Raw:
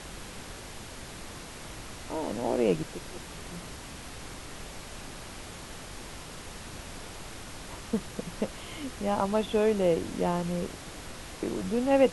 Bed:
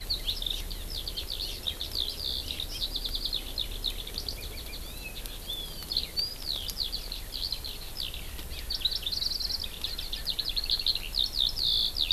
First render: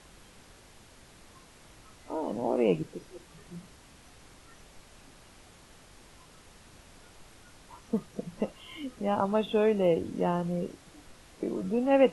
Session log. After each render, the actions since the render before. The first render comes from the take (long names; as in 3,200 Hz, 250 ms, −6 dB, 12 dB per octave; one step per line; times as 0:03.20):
noise reduction from a noise print 12 dB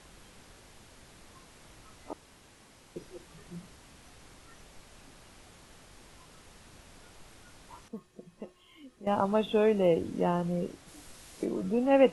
0:02.13–0:02.96: fill with room tone
0:07.88–0:09.07: tuned comb filter 360 Hz, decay 0.19 s, harmonics odd, mix 80%
0:10.87–0:11.44: high-shelf EQ 6,200 Hz → 3,500 Hz +10 dB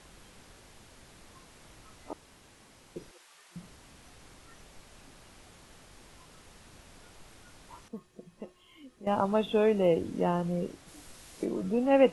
0:03.11–0:03.56: high-pass filter 890 Hz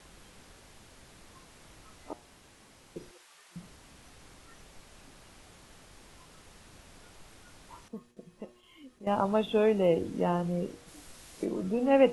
noise gate with hold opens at −52 dBFS
hum removal 119.4 Hz, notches 8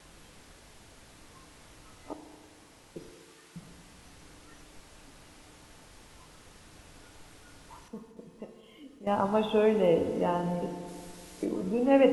feedback delay network reverb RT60 2.3 s, low-frequency decay 1×, high-frequency decay 0.6×, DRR 7 dB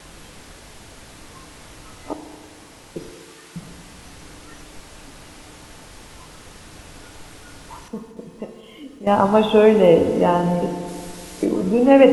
level +11.5 dB
brickwall limiter −1 dBFS, peak gain reduction 2.5 dB